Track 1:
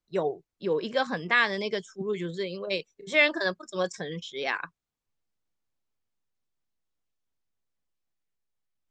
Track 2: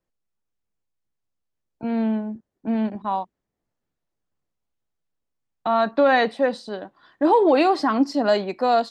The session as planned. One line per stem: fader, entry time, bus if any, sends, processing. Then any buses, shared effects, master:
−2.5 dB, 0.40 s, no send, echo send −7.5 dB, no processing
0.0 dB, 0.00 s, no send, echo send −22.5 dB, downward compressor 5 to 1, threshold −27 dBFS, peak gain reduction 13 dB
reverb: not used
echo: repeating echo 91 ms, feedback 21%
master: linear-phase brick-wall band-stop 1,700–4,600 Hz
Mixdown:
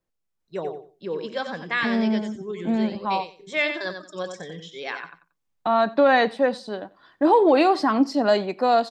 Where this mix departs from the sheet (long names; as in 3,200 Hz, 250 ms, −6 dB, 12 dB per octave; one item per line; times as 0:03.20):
stem 2: missing downward compressor 5 to 1, threshold −27 dBFS, peak gain reduction 13 dB
master: missing linear-phase brick-wall band-stop 1,700–4,600 Hz